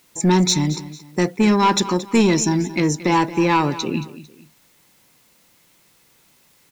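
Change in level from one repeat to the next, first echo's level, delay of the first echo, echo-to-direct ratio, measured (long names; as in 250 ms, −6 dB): −9.0 dB, −15.5 dB, 225 ms, −15.0 dB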